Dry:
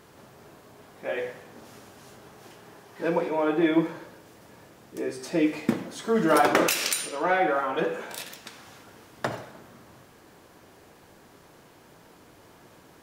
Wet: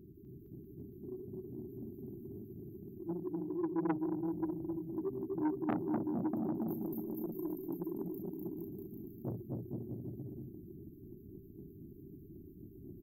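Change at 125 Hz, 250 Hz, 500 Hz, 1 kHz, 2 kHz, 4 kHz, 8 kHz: −2.5 dB, −7.0 dB, −14.0 dB, −19.0 dB, −28.0 dB, below −40 dB, below −40 dB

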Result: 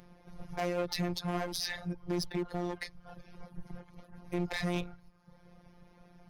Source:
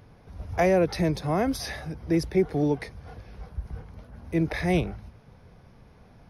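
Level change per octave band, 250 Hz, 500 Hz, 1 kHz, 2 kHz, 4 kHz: −10.0, −11.5, −8.5, −6.5, 0.0 decibels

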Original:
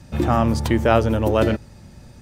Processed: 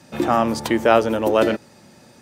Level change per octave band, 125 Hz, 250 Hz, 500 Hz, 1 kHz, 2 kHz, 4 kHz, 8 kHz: −12.0, −0.5, +2.0, +2.5, +2.5, +2.5, +2.5 decibels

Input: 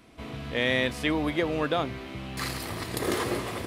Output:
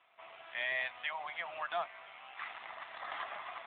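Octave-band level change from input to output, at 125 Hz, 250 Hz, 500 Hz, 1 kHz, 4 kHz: below −35 dB, −38.0 dB, −16.5 dB, −6.5 dB, −13.0 dB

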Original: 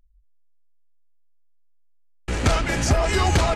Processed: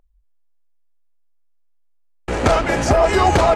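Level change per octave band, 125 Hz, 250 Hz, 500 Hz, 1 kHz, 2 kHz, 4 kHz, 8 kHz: 0.0, +4.5, +9.5, +8.5, +3.5, +0.5, −1.0 decibels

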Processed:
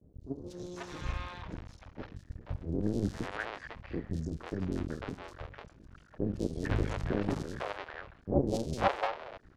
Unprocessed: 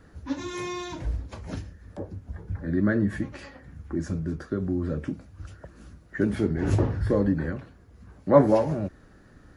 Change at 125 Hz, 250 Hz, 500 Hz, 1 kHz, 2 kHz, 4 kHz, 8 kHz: −8.0 dB, −9.0 dB, −10.0 dB, −3.5 dB, −3.5 dB, −1.5 dB, can't be measured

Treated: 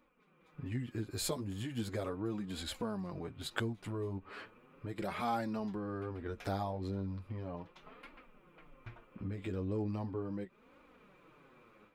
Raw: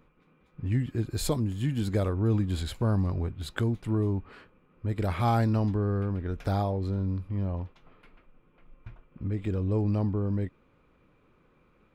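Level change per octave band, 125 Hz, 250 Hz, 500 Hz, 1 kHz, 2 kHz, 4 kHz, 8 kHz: −14.5 dB, −9.0 dB, −7.5 dB, −6.5 dB, −3.5 dB, −2.5 dB, can't be measured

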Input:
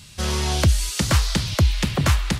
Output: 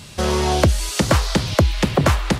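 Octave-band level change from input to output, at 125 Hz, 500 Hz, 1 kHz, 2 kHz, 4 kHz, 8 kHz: +1.0, +9.5, +7.0, +3.0, +0.5, 0.0 decibels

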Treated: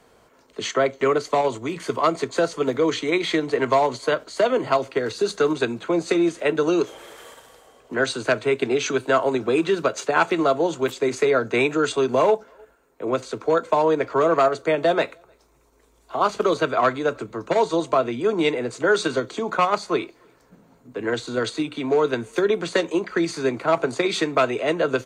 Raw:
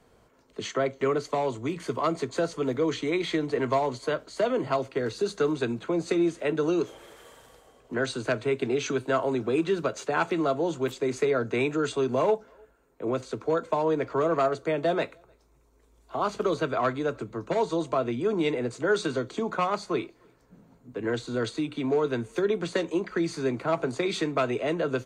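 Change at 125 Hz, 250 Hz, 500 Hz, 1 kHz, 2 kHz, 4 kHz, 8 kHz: +0.5, +4.0, +5.5, +7.0, +7.5, +7.5, +7.0 decibels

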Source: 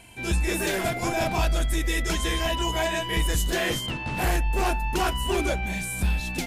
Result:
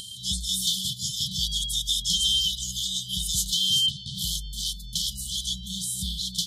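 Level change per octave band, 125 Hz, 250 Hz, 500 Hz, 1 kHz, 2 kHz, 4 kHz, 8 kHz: −9.0 dB, −11.0 dB, below −40 dB, below −40 dB, below −40 dB, +9.0 dB, +6.0 dB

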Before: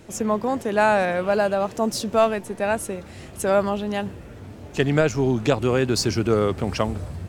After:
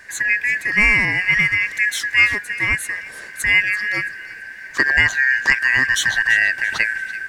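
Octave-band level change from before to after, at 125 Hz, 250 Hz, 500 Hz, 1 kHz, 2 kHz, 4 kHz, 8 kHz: −7.5, −11.0, −18.5, −8.5, +17.0, +6.5, +4.0 decibels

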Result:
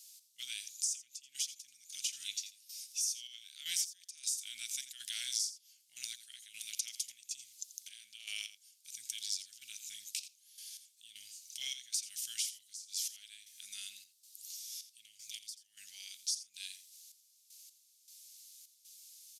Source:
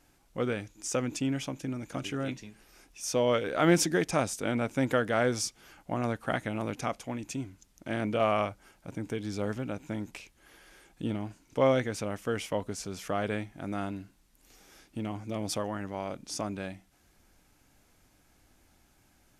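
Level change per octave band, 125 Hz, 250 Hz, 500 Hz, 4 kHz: below −40 dB, below −40 dB, below −40 dB, +1.5 dB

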